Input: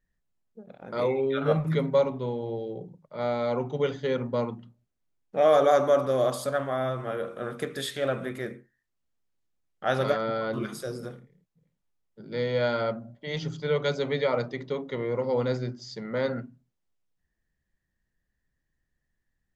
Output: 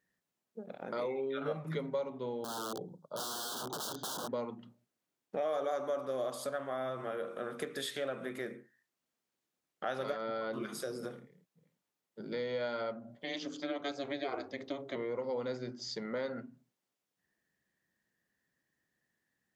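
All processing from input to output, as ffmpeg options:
ffmpeg -i in.wav -filter_complex "[0:a]asettb=1/sr,asplit=3[link_01][link_02][link_03];[link_01]atrim=end=2.444[link_04];[link_02]atrim=start=2.44:end=4.29,asetpts=PTS-STARTPTS,afade=type=in:duration=0.004:curve=qsin,afade=type=out:start_time=1.846:duration=0.004:curve=qsin,aeval=exprs='(mod(31.6*val(0)+1,2)-1)/31.6':channel_layout=same,asuperstop=centerf=2200:order=8:qfactor=1.3[link_05];[link_03]atrim=start=4.286[link_06];[link_04][link_05]acrossfade=duration=0.004:curve1=hsin:curve2=qsin[link_07];[link_07][link_06]acrossfade=duration=0.004:curve1=qsin:curve2=hsin,asettb=1/sr,asplit=3[link_08][link_09][link_10];[link_08]atrim=end=13.224[link_11];[link_09]atrim=start=13.22:end=14.96,asetpts=PTS-STARTPTS,afade=type=in:duration=0.004:curve=qsin,afade=type=out:start_time=1.736:duration=0.004:curve=qsin,highshelf=frequency=4500:gain=5.5,aeval=exprs='val(0)*sin(2*PI*140*n/s)':channel_layout=same[link_12];[link_10]atrim=start=14.956[link_13];[link_11][link_12]acrossfade=duration=0.004:curve1=hsin:curve2=qsin[link_14];[link_14][link_13]acrossfade=duration=0.004:curve1=qsin:curve2=hsin,highpass=210,acompressor=threshold=-41dB:ratio=3,volume=3dB" out.wav

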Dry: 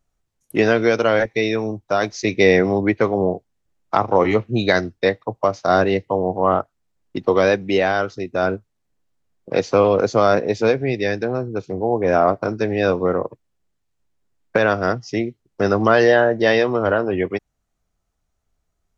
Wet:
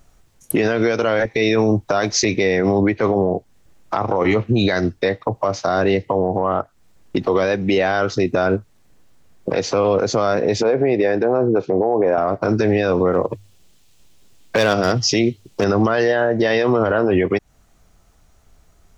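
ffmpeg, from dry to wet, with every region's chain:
ffmpeg -i in.wav -filter_complex "[0:a]asettb=1/sr,asplit=3[link_01][link_02][link_03];[link_01]atrim=end=10.634[link_04];[link_02]atrim=start=10.63:end=12.18,asetpts=PTS-STARTPTS,afade=type=in:duration=0.004:curve=qsin,afade=type=out:start_time=1.546:duration=0.004:curve=qsin,acompressor=threshold=-20dB:ratio=3:attack=3.2:release=140:knee=1:detection=peak,bandpass=frequency=630:width_type=q:width=0.75[link_05];[link_03]atrim=start=12.176[link_06];[link_04][link_05]acrossfade=duration=0.004:curve1=hsin:curve2=qsin[link_07];[link_07][link_06]acrossfade=duration=0.004:curve1=qsin:curve2=hsin,asettb=1/sr,asplit=3[link_08][link_09][link_10];[link_08]atrim=end=13.134[link_11];[link_09]atrim=start=13.13:end=15.64,asetpts=PTS-STARTPTS,afade=type=in:duration=0.004:curve=qsin,afade=type=out:start_time=2.506:duration=0.004:curve=qsin,highshelf=frequency=2300:width_type=q:width=1.5:gain=6.5,bandreject=frequency=50:width_type=h:width=6,bandreject=frequency=100:width_type=h:width=6,volume=10.5dB,asoftclip=hard,volume=-10.5dB[link_12];[link_10]atrim=start=15.636[link_13];[link_11][link_12]acrossfade=duration=0.004:curve1=hsin:curve2=qsin[link_14];[link_14][link_13]acrossfade=duration=0.004:curve1=qsin:curve2=hsin,acompressor=threshold=-27dB:ratio=6,alimiter=level_in=26.5dB:limit=-1dB:release=50:level=0:latency=1,volume=-7dB" out.wav

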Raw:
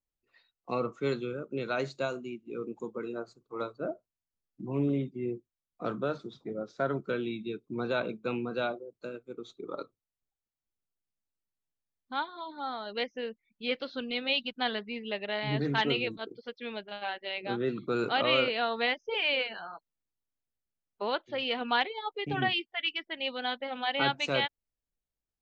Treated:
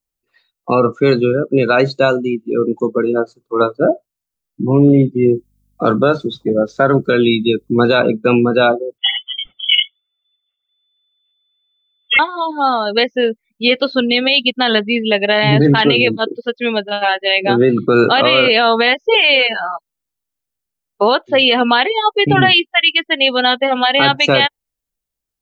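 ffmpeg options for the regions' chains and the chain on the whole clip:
ffmpeg -i in.wav -filter_complex "[0:a]asettb=1/sr,asplit=3[link_01][link_02][link_03];[link_01]atrim=end=5.164[link_04];[link_02]atrim=start=5.16:end=7.97,asetpts=PTS-STARTPTS,afade=type=in:duration=0.004:curve=qsin,afade=type=out:start_time=2.806:duration=0.004:curve=qsin,highshelf=frequency=4000:gain=10,aeval=exprs='val(0)+0.000562*(sin(2*PI*50*n/s)+sin(2*PI*2*50*n/s)/2+sin(2*PI*3*50*n/s)/3+sin(2*PI*4*50*n/s)/4+sin(2*PI*5*50*n/s)/5)':channel_layout=same[link_05];[link_03]atrim=start=7.966[link_06];[link_04][link_05]acrossfade=duration=0.004:curve1=hsin:curve2=qsin[link_07];[link_07][link_06]acrossfade=duration=0.004:curve1=qsin:curve2=hsin,asettb=1/sr,asplit=3[link_08][link_09][link_10];[link_08]atrim=end=8.984[link_11];[link_09]atrim=start=8.98:end=12.19,asetpts=PTS-STARTPTS,afade=type=in:duration=0.004:curve=qsin,afade=type=out:start_time=3.206:duration=0.004:curve=qsin,aphaser=in_gain=1:out_gain=1:delay=3.3:decay=0.71:speed=1.3:type=sinusoidal,aecho=1:1:1.4:0.68,atrim=end_sample=141561,lowpass=frequency=3000:width_type=q:width=0.5098,lowpass=frequency=3000:width_type=q:width=0.6013,lowpass=frequency=3000:width_type=q:width=0.9,lowpass=frequency=3000:width_type=q:width=2.563,afreqshift=-3500[link_12];[link_10]atrim=start=12.186[link_13];[link_11][link_12]acrossfade=duration=0.004:curve1=hsin:curve2=qsin[link_14];[link_14][link_13]acrossfade=duration=0.004:curve1=qsin:curve2=hsin,afftdn=noise_reduction=16:noise_floor=-41,highshelf=frequency=5900:gain=7.5,alimiter=level_in=22.5dB:limit=-1dB:release=50:level=0:latency=1,volume=-1dB" out.wav

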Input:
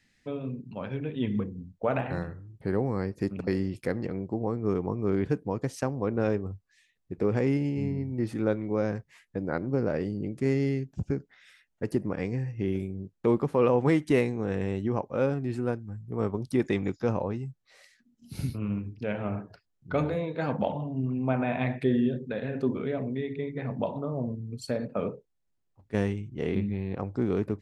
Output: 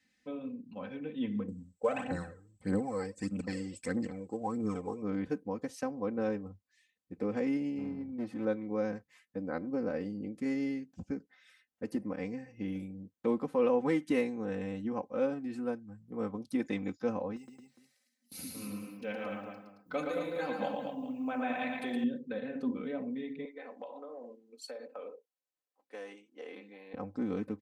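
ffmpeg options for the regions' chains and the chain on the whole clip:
ffmpeg -i in.wav -filter_complex "[0:a]asettb=1/sr,asplit=3[link_01][link_02][link_03];[link_01]atrim=end=1.484[link_04];[link_02]atrim=start=1.48:end=5.02,asetpts=PTS-STARTPTS,afade=type=in:duration=0.004:curve=qsin,afade=type=out:start_time=3.536:duration=0.004:curve=qsin,aphaser=in_gain=1:out_gain=1:delay=2.6:decay=0.62:speed=1.6:type=triangular,lowpass=frequency=7900:width_type=q:width=16[link_05];[link_03]atrim=start=5.016[link_06];[link_04][link_05]acrossfade=duration=0.004:curve1=hsin:curve2=qsin[link_07];[link_07][link_06]acrossfade=duration=0.004:curve1=qsin:curve2=hsin,asettb=1/sr,asplit=3[link_08][link_09][link_10];[link_08]atrim=end=7.784[link_11];[link_09]atrim=start=7.78:end=8.45,asetpts=PTS-STARTPTS,afade=type=in:duration=0.004:curve=qsin,afade=type=out:start_time=0.666:duration=0.004:curve=qsin,highshelf=frequency=4900:gain=-10.5,aeval=exprs='clip(val(0),-1,0.0282)':channel_layout=same[link_12];[link_10]atrim=start=8.446[link_13];[link_11][link_12]acrossfade=duration=0.004:curve1=hsin:curve2=qsin[link_14];[link_14][link_13]acrossfade=duration=0.004:curve1=qsin:curve2=hsin,asettb=1/sr,asplit=3[link_15][link_16][link_17];[link_15]atrim=end=17.364[link_18];[link_16]atrim=start=17.36:end=22.04,asetpts=PTS-STARTPTS,afade=type=in:duration=0.004:curve=qsin,afade=type=out:start_time=4.676:duration=0.004:curve=qsin,agate=range=-15dB:threshold=-50dB:ratio=16:release=100:detection=peak,aemphasis=mode=production:type=bsi,aecho=1:1:117|223|410:0.631|0.531|0.188,atrim=end_sample=206388[link_19];[link_17]atrim=start=22.036[link_20];[link_18][link_19]acrossfade=duration=0.004:curve1=hsin:curve2=qsin[link_21];[link_21][link_20]acrossfade=duration=0.004:curve1=qsin:curve2=hsin,asettb=1/sr,asplit=3[link_22][link_23][link_24];[link_22]atrim=end=23.454[link_25];[link_23]atrim=start=23.45:end=26.94,asetpts=PTS-STARTPTS,afade=type=in:duration=0.004:curve=qsin,afade=type=out:start_time=3.486:duration=0.004:curve=qsin,highpass=frequency=380:width=0.5412,highpass=frequency=380:width=1.3066,acompressor=threshold=-34dB:ratio=4:attack=3.2:release=140:knee=1:detection=peak[link_26];[link_24]atrim=start=26.936[link_27];[link_25][link_26]acrossfade=duration=0.004:curve1=hsin:curve2=qsin[link_28];[link_28][link_27]acrossfade=duration=0.004:curve1=qsin:curve2=hsin,highpass=99,aecho=1:1:3.9:0.85,volume=-8.5dB" out.wav

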